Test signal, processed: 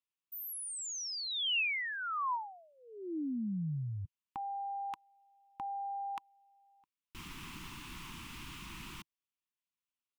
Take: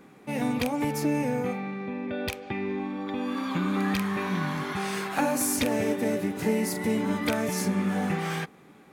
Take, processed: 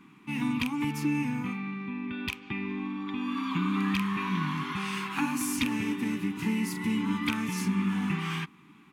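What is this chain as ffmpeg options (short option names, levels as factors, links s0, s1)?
-af "firequalizer=gain_entry='entry(100,0);entry(150,4);entry(320,3);entry(560,-28);entry(980,7);entry(1600,-1);entry(2700,9);entry(4100,0);entry(8200,-2);entry(15000,-4)':delay=0.05:min_phase=1,volume=0.596"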